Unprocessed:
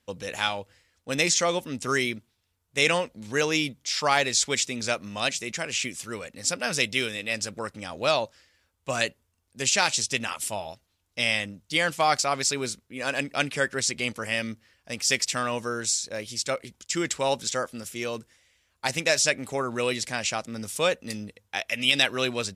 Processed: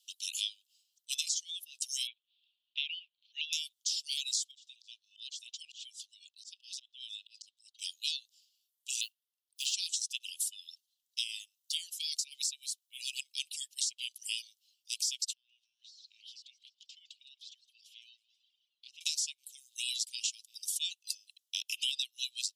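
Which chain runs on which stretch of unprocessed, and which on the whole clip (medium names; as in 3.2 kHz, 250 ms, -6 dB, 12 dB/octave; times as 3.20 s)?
2.07–3.53 s: steep low-pass 3.3 kHz + upward compressor, threshold -42 dBFS
4.51–7.79 s: ladder band-pass 3.9 kHz, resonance 45% + compression 10:1, threshold -42 dBFS + slow attack 105 ms
9.01–9.74 s: peaking EQ 7.4 kHz -11.5 dB 1.1 oct + band-stop 2.2 kHz, Q 6.2 + modulation noise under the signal 26 dB
11.23–13.77 s: rippled Chebyshev high-pass 490 Hz, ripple 9 dB + treble shelf 7.9 kHz +9 dB + tape noise reduction on one side only encoder only
15.33–19.01 s: compression 8:1, threshold -37 dBFS + distance through air 330 m + modulated delay 162 ms, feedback 52%, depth 111 cents, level -12 dB
whole clip: steep high-pass 2.9 kHz 72 dB/octave; reverb removal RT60 1.1 s; compression 6:1, threshold -38 dBFS; trim +6 dB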